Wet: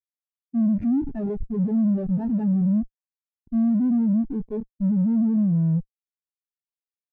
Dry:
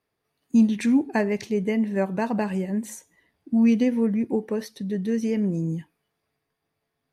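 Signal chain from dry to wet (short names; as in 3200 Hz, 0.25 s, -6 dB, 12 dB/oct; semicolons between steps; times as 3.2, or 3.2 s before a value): Wiener smoothing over 25 samples; Schmitt trigger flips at -35 dBFS; spectral expander 2.5:1; gain +2.5 dB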